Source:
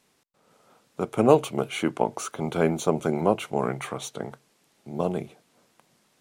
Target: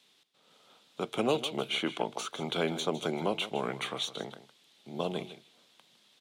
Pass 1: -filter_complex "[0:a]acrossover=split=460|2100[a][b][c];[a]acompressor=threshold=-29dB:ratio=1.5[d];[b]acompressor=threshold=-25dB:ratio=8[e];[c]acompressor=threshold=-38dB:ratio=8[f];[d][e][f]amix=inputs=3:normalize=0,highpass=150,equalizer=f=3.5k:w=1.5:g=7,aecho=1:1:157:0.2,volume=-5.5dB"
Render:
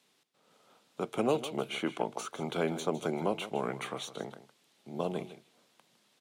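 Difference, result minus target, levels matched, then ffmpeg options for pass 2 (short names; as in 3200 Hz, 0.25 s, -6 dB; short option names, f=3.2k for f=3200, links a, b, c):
4000 Hz band -6.5 dB
-filter_complex "[0:a]acrossover=split=460|2100[a][b][c];[a]acompressor=threshold=-29dB:ratio=1.5[d];[b]acompressor=threshold=-25dB:ratio=8[e];[c]acompressor=threshold=-38dB:ratio=8[f];[d][e][f]amix=inputs=3:normalize=0,highpass=150,equalizer=f=3.5k:w=1.5:g=16.5,aecho=1:1:157:0.2,volume=-5.5dB"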